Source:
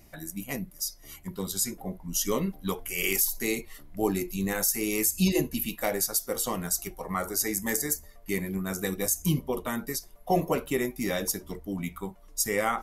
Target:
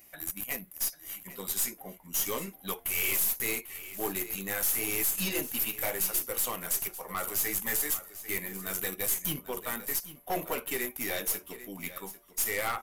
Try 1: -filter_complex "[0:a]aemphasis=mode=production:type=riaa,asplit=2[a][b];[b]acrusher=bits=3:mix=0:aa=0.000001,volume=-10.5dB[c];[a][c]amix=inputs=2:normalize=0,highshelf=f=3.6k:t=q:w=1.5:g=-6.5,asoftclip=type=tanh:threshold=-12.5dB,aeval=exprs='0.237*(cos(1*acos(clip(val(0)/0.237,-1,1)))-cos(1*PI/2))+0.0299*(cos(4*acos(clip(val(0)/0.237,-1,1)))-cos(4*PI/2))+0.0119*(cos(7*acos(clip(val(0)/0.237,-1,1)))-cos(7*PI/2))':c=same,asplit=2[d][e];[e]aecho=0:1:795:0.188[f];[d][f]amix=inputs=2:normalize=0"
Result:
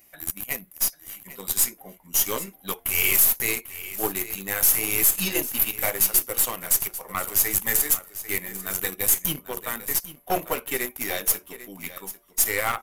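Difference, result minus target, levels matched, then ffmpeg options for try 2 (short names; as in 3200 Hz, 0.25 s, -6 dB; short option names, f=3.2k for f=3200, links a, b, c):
soft clip: distortion -8 dB
-filter_complex "[0:a]aemphasis=mode=production:type=riaa,asplit=2[a][b];[b]acrusher=bits=3:mix=0:aa=0.000001,volume=-10.5dB[c];[a][c]amix=inputs=2:normalize=0,highshelf=f=3.6k:t=q:w=1.5:g=-6.5,asoftclip=type=tanh:threshold=-24dB,aeval=exprs='0.237*(cos(1*acos(clip(val(0)/0.237,-1,1)))-cos(1*PI/2))+0.0299*(cos(4*acos(clip(val(0)/0.237,-1,1)))-cos(4*PI/2))+0.0119*(cos(7*acos(clip(val(0)/0.237,-1,1)))-cos(7*PI/2))':c=same,asplit=2[d][e];[e]aecho=0:1:795:0.188[f];[d][f]amix=inputs=2:normalize=0"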